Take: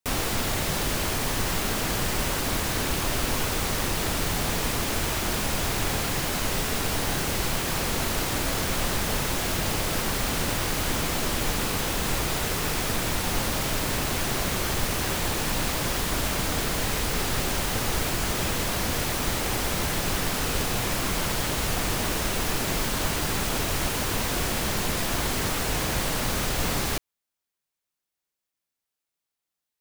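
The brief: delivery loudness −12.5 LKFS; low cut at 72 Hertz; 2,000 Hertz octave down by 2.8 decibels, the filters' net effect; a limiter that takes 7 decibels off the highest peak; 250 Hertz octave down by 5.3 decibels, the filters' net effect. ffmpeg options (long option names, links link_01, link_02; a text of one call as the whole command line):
ffmpeg -i in.wav -af "highpass=72,equalizer=frequency=250:width_type=o:gain=-7.5,equalizer=frequency=2000:width_type=o:gain=-3.5,volume=17dB,alimiter=limit=-4dB:level=0:latency=1" out.wav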